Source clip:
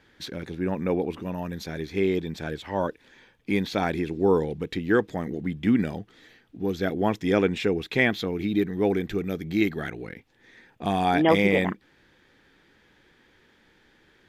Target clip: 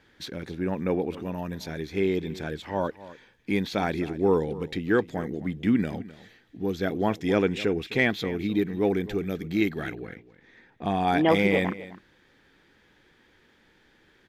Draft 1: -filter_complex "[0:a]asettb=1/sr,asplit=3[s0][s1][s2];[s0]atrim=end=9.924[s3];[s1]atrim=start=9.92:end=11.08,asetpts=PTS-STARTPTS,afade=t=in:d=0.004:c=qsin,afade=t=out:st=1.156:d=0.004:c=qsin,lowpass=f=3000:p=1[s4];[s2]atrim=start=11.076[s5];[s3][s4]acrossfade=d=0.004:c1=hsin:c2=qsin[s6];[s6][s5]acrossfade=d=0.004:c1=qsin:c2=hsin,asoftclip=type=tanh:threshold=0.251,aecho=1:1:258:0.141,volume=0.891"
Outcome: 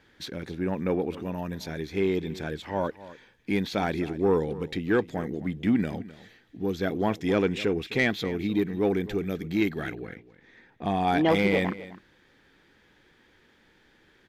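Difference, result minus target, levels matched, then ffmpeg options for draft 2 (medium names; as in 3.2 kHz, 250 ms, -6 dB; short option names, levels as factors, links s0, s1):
saturation: distortion +12 dB
-filter_complex "[0:a]asettb=1/sr,asplit=3[s0][s1][s2];[s0]atrim=end=9.924[s3];[s1]atrim=start=9.92:end=11.08,asetpts=PTS-STARTPTS,afade=t=in:d=0.004:c=qsin,afade=t=out:st=1.156:d=0.004:c=qsin,lowpass=f=3000:p=1[s4];[s2]atrim=start=11.076[s5];[s3][s4]acrossfade=d=0.004:c1=hsin:c2=qsin[s6];[s6][s5]acrossfade=d=0.004:c1=qsin:c2=hsin,asoftclip=type=tanh:threshold=0.596,aecho=1:1:258:0.141,volume=0.891"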